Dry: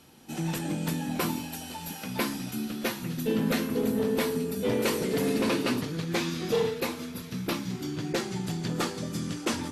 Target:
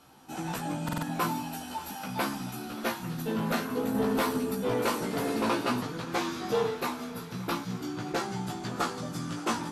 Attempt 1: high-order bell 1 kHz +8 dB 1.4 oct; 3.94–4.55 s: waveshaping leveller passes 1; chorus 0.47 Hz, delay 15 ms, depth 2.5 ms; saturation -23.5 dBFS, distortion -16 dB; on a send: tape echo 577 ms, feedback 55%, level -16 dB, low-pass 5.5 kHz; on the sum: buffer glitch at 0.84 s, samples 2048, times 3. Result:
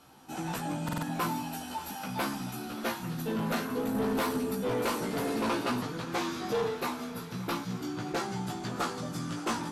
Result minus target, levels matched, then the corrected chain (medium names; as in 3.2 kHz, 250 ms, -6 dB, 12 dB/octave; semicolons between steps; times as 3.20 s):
saturation: distortion +17 dB
high-order bell 1 kHz +8 dB 1.4 oct; 3.94–4.55 s: waveshaping leveller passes 1; chorus 0.47 Hz, delay 15 ms, depth 2.5 ms; saturation -13 dBFS, distortion -33 dB; on a send: tape echo 577 ms, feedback 55%, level -16 dB, low-pass 5.5 kHz; on the sum: buffer glitch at 0.84 s, samples 2048, times 3